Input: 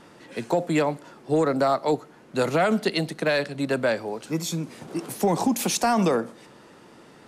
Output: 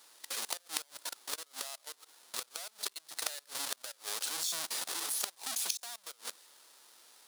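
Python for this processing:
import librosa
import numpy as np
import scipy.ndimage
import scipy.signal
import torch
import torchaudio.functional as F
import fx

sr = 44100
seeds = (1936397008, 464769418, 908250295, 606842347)

y = fx.halfwave_hold(x, sr)
y = scipy.signal.sosfilt(scipy.signal.butter(2, 1000.0, 'highpass', fs=sr, output='sos'), y)
y = fx.peak_eq(y, sr, hz=10000.0, db=6.5, octaves=0.48)
y = fx.level_steps(y, sr, step_db=23)
y = fx.gate_flip(y, sr, shuts_db=-25.0, range_db=-29)
y = fx.high_shelf_res(y, sr, hz=3100.0, db=7.0, q=1.5)
y = y * 10.0 ** (4.5 / 20.0)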